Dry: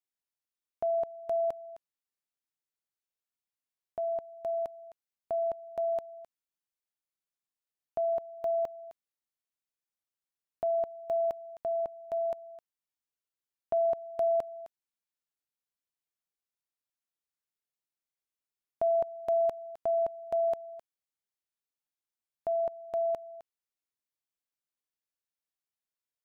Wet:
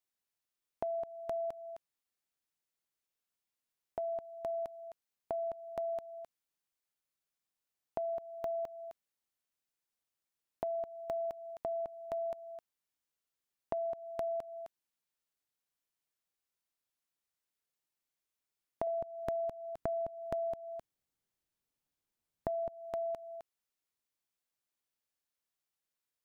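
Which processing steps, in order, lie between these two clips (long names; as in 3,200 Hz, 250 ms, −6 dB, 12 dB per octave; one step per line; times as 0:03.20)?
0:18.87–0:22.69: low-shelf EQ 400 Hz +11.5 dB
downward compressor 6 to 1, threshold −34 dBFS, peak gain reduction 11.5 dB
dynamic equaliser 570 Hz, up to −4 dB, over −47 dBFS, Q 1.3
level +2.5 dB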